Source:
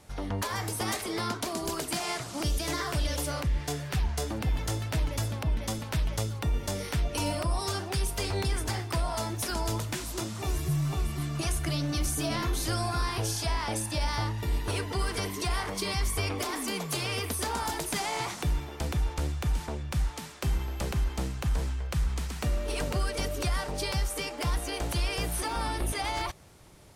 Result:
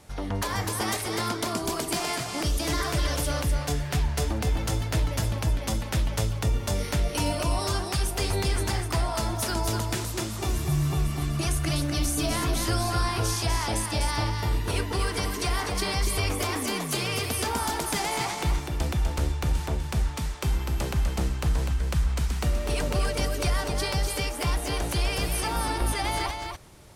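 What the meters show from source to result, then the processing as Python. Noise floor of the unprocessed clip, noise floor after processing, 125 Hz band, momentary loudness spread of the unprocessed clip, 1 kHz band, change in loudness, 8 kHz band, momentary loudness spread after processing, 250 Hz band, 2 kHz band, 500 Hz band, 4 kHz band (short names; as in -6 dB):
-40 dBFS, -34 dBFS, +4.0 dB, 3 LU, +3.5 dB, +3.5 dB, +3.5 dB, 3 LU, +3.5 dB, +3.5 dB, +3.5 dB, +3.5 dB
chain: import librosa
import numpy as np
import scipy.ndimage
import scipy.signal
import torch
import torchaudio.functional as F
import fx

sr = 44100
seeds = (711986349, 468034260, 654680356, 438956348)

y = x + 10.0 ** (-5.5 / 20.0) * np.pad(x, (int(249 * sr / 1000.0), 0))[:len(x)]
y = y * 10.0 ** (2.5 / 20.0)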